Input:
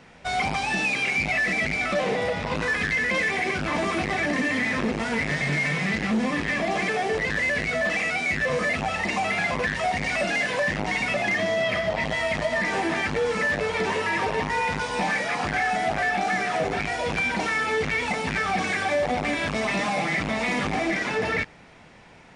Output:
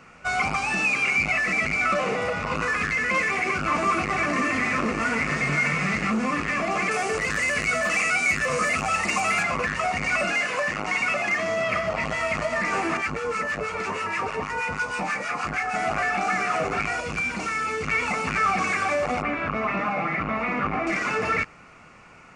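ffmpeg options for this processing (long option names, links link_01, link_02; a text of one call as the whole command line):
ffmpeg -i in.wav -filter_complex "[0:a]asettb=1/sr,asplit=3[link_01][link_02][link_03];[link_01]atrim=end=3.624[link_04];[link_02]atrim=start=3.62:end=6.1,asetpts=PTS-STARTPTS,afade=type=in:duration=0.004:curve=qsin,afade=type=out:start_time=2.476:duration=0.004:curve=qsin,aecho=1:1:526:0.422,atrim=end_sample=109368[link_05];[link_03]atrim=start=6.096[link_06];[link_04][link_05]acrossfade=duration=0.004:curve1=hsin:curve2=qsin[link_07];[link_07][link_06]acrossfade=duration=0.004:curve1=qsin:curve2=hsin,asettb=1/sr,asplit=3[link_08][link_09][link_10];[link_08]atrim=end=6.914[link_11];[link_09]atrim=start=6.91:end=9.43,asetpts=PTS-STARTPTS,afade=type=in:duration=0.004:curve=qsin,afade=type=out:start_time=2.516:duration=0.004:curve=qsin,aemphasis=mode=production:type=50fm[link_12];[link_10]atrim=start=9.426[link_13];[link_11][link_12]acrossfade=duration=0.004:curve1=hsin:curve2=qsin[link_14];[link_14][link_13]acrossfade=duration=0.004:curve1=qsin:curve2=hsin,asettb=1/sr,asplit=3[link_15][link_16][link_17];[link_15]atrim=end=10.334[link_18];[link_16]atrim=start=10.33:end=11.46,asetpts=PTS-STARTPTS,afade=type=in:duration=0.004:curve=qsin,afade=type=out:start_time=1.126:duration=0.004:curve=qsin,lowshelf=frequency=200:gain=-8.5[link_19];[link_17]atrim=start=11.456[link_20];[link_18][link_19]acrossfade=duration=0.004:curve1=hsin:curve2=qsin[link_21];[link_21][link_20]acrossfade=duration=0.004:curve1=qsin:curve2=hsin,asettb=1/sr,asplit=3[link_22][link_23][link_24];[link_22]atrim=end=12.974[link_25];[link_23]atrim=start=12.97:end=15.74,asetpts=PTS-STARTPTS,afade=type=in:duration=0.004:curve=qsin,afade=type=out:start_time=2.766:duration=0.004:curve=qsin,acrossover=split=1100[link_26][link_27];[link_26]aeval=exprs='val(0)*(1-0.7/2+0.7/2*cos(2*PI*6.3*n/s))':channel_layout=same[link_28];[link_27]aeval=exprs='val(0)*(1-0.7/2-0.7/2*cos(2*PI*6.3*n/s))':channel_layout=same[link_29];[link_28][link_29]amix=inputs=2:normalize=0[link_30];[link_24]atrim=start=15.736[link_31];[link_25][link_30]acrossfade=duration=0.004:curve1=hsin:curve2=qsin[link_32];[link_32][link_31]acrossfade=duration=0.004:curve1=qsin:curve2=hsin,asettb=1/sr,asplit=3[link_33][link_34][link_35];[link_33]atrim=end=17.004[link_36];[link_34]atrim=start=17:end=17.88,asetpts=PTS-STARTPTS,afade=type=in:duration=0.004:curve=qsin,afade=type=out:start_time=0.876:duration=0.004:curve=qsin,equalizer=frequency=1000:width=0.45:gain=-6.5[link_37];[link_35]atrim=start=17.876[link_38];[link_36][link_37]acrossfade=duration=0.004:curve1=hsin:curve2=qsin[link_39];[link_39][link_38]acrossfade=duration=0.004:curve1=qsin:curve2=hsin,asettb=1/sr,asplit=3[link_40][link_41][link_42];[link_40]atrim=end=19.224[link_43];[link_41]atrim=start=19.22:end=20.87,asetpts=PTS-STARTPTS,afade=type=in:duration=0.004:curve=qsin,afade=type=out:start_time=1.646:duration=0.004:curve=qsin,lowpass=2100[link_44];[link_42]atrim=start=20.866[link_45];[link_43][link_44]acrossfade=duration=0.004:curve1=hsin:curve2=qsin[link_46];[link_46][link_45]acrossfade=duration=0.004:curve1=qsin:curve2=hsin,superequalizer=10b=3.16:12b=1.58:13b=0.501:15b=1.58,volume=-1.5dB" out.wav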